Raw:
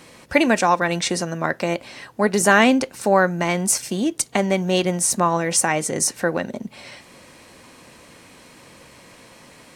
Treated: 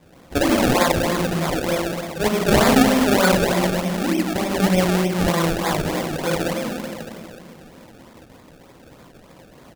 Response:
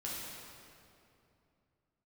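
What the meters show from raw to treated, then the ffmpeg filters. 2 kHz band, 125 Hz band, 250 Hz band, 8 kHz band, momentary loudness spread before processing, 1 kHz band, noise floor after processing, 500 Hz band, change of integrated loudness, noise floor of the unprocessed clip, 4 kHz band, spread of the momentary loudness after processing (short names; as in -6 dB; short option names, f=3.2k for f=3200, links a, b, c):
-2.0 dB, +4.5 dB, +3.0 dB, -7.0 dB, 9 LU, -1.0 dB, -48 dBFS, +1.0 dB, 0.0 dB, -48 dBFS, +2.0 dB, 11 LU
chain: -filter_complex "[1:a]atrim=start_sample=2205[a];[0:a][a]afir=irnorm=-1:irlink=0,aresample=8000,aresample=44100,acrusher=samples=30:mix=1:aa=0.000001:lfo=1:lforange=30:lforate=3.3,volume=-1.5dB"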